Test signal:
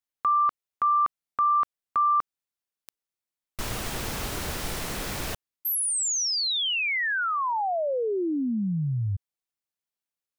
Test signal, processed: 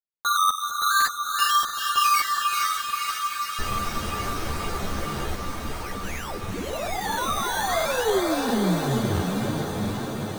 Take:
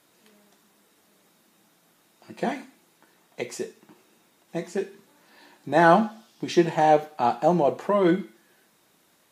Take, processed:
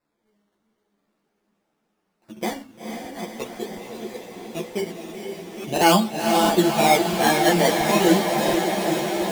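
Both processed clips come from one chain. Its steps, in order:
delay that plays each chunk backwards 473 ms, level −7.5 dB
low-pass filter 1,600 Hz 6 dB per octave
noise gate −54 dBFS, range −13 dB
sample-and-hold swept by an LFO 14×, swing 60% 0.44 Hz
on a send: feedback delay with all-pass diffusion 470 ms, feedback 79%, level −5.5 dB
on the sum: regular buffer underruns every 0.68 s, samples 2,048, repeat, from 0:00.96
string-ensemble chorus
level +4.5 dB

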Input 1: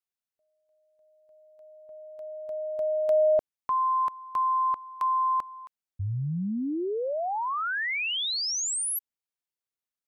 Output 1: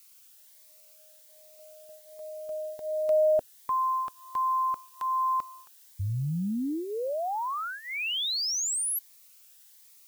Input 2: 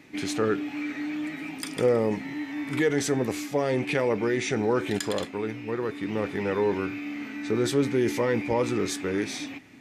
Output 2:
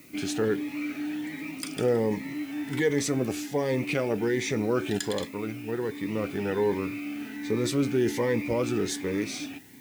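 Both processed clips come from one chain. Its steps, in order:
background noise blue −56 dBFS
phaser whose notches keep moving one way rising 1.3 Hz

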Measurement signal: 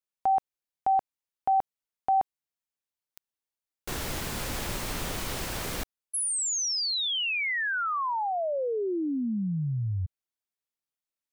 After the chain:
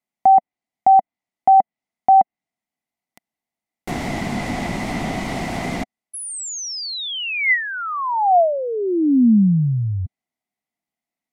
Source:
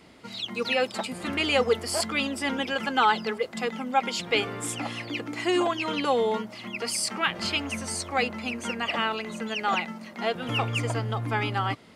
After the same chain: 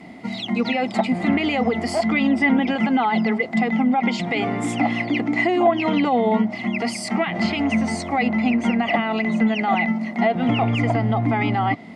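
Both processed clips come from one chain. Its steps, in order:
brickwall limiter −21 dBFS
hollow resonant body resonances 220/700/2,000 Hz, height 17 dB, ringing for 20 ms
treble cut that deepens with the level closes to 2,200 Hz, closed at −11.5 dBFS

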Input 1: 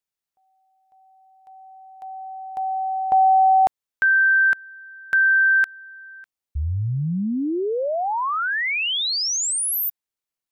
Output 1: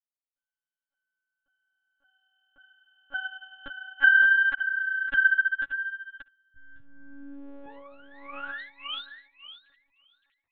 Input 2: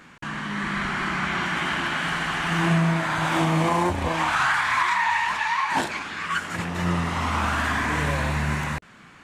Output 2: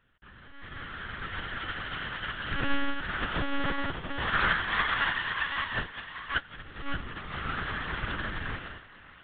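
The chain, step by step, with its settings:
lower of the sound and its delayed copy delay 0.63 ms
high-pass filter 130 Hz 6 dB per octave
dynamic equaliser 840 Hz, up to −3 dB, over −49 dBFS, Q 6.1
feedback echo with a high-pass in the loop 569 ms, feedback 29%, high-pass 460 Hz, level −3 dB
one-pitch LPC vocoder at 8 kHz 280 Hz
expander for the loud parts 2.5 to 1, over −32 dBFS

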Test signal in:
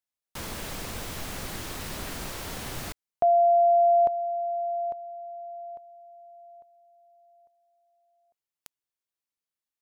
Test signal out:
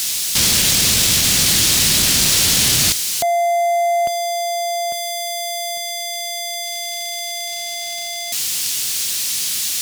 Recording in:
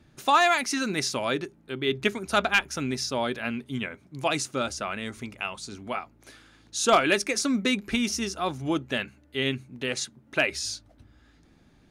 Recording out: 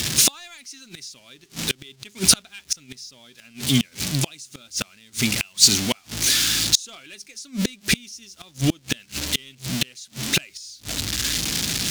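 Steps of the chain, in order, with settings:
converter with a step at zero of −34.5 dBFS
meter weighting curve D
leveller curve on the samples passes 1
gate with flip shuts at −11 dBFS, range −35 dB
in parallel at −6 dB: gain into a clipping stage and back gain 25.5 dB
on the sum: bass and treble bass +14 dB, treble +14 dB
level −1 dB

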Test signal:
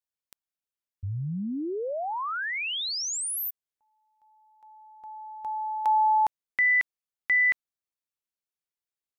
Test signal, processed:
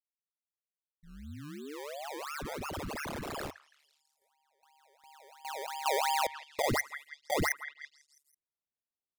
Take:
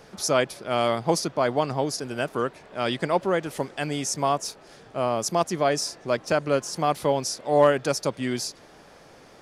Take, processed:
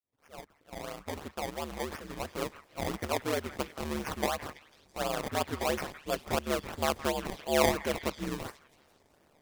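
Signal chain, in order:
fade in at the beginning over 2.67 s
sample-and-hold swept by an LFO 22×, swing 100% 2.9 Hz
ring modulation 73 Hz
parametric band 84 Hz +4.5 dB 0.3 octaves
echo through a band-pass that steps 165 ms, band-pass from 1,500 Hz, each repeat 0.7 octaves, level −9.5 dB
noise gate −41 dBFS, range −7 dB
level −5 dB

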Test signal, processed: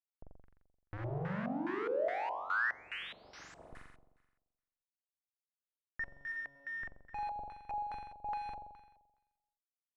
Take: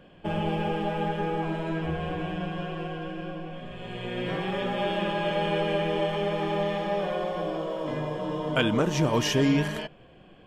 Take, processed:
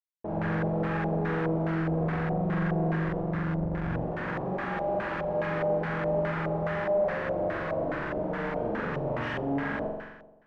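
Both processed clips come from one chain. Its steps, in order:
comparator with hysteresis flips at −36.5 dBFS
flutter between parallel walls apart 7.4 metres, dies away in 1.1 s
auto-filter low-pass square 2.4 Hz 670–1,700 Hz
level −8 dB

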